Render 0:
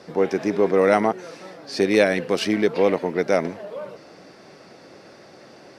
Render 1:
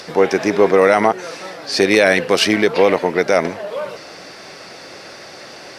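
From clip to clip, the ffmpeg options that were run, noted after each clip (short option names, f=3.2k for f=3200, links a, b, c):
-filter_complex "[0:a]equalizer=f=210:w=0.49:g=-8,acrossover=split=1700[a][b];[b]acompressor=mode=upward:threshold=-45dB:ratio=2.5[c];[a][c]amix=inputs=2:normalize=0,alimiter=level_in=12.5dB:limit=-1dB:release=50:level=0:latency=1,volume=-1dB"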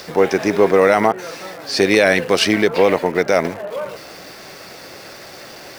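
-filter_complex "[0:a]lowshelf=f=83:g=9,acrossover=split=2900[a][b];[b]acrusher=bits=6:mix=0:aa=0.000001[c];[a][c]amix=inputs=2:normalize=0,volume=-1dB"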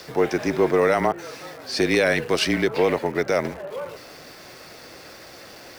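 -af "afreqshift=-27,volume=-6dB"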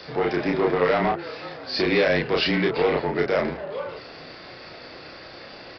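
-filter_complex "[0:a]aresample=11025,asoftclip=type=tanh:threshold=-16.5dB,aresample=44100,asplit=2[a][b];[b]adelay=32,volume=-2dB[c];[a][c]amix=inputs=2:normalize=0"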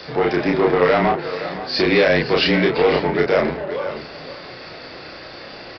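-af "aecho=1:1:517:0.224,volume=5dB"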